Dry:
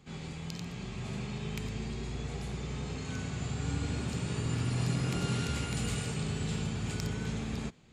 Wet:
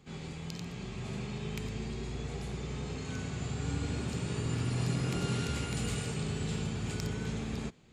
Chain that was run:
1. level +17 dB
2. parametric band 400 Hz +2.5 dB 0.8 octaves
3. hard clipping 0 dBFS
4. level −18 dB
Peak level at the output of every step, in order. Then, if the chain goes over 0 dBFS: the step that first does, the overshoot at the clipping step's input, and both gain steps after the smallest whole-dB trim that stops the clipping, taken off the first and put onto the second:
−3.0, −3.0, −3.0, −21.0 dBFS
no step passes full scale

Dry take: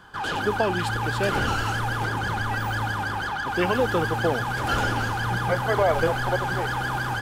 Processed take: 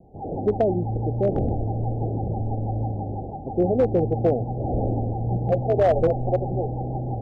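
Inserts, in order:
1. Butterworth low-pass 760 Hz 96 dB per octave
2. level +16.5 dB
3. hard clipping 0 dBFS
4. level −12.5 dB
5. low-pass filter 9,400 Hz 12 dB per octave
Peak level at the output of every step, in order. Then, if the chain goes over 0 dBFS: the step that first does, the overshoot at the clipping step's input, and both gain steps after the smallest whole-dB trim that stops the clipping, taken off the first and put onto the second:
−12.0, +4.5, 0.0, −12.5, −12.5 dBFS
step 2, 4.5 dB
step 2 +11.5 dB, step 4 −7.5 dB

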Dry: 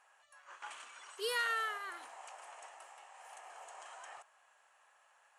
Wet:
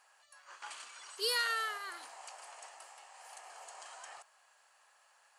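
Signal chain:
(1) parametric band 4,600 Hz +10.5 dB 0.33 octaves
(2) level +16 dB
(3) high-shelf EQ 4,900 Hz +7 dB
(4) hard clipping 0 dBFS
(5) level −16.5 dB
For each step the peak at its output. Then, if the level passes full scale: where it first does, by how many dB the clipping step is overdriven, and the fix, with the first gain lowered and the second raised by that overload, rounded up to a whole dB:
−21.5, −5.5, −4.0, −4.0, −20.5 dBFS
no step passes full scale

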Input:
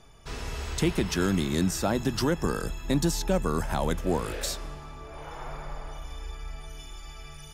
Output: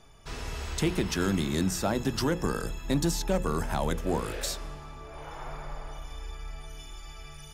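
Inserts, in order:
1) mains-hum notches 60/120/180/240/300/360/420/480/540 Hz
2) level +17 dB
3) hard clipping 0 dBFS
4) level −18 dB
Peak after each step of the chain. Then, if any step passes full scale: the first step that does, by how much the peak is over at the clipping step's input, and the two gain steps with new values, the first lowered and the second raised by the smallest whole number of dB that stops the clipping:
−13.0, +4.0, 0.0, −18.0 dBFS
step 2, 4.0 dB
step 2 +13 dB, step 4 −14 dB

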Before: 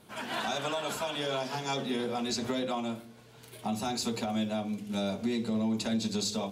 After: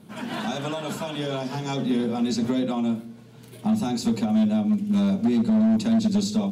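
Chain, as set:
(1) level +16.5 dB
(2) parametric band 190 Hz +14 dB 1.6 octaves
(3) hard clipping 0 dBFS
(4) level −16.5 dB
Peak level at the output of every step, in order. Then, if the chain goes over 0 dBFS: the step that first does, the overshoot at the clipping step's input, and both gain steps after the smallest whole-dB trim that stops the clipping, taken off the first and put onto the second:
−1.5, +6.5, 0.0, −16.5 dBFS
step 2, 6.5 dB
step 1 +9.5 dB, step 4 −9.5 dB

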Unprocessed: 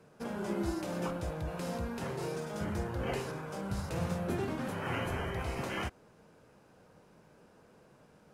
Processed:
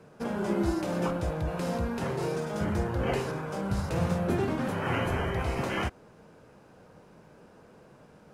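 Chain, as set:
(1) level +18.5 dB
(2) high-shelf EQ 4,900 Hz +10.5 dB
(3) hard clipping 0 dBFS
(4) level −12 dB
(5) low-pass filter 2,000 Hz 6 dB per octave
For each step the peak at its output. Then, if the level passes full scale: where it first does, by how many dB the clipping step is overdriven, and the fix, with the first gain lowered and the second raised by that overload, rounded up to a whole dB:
−3.5, −3.0, −3.0, −15.0, −16.0 dBFS
no step passes full scale

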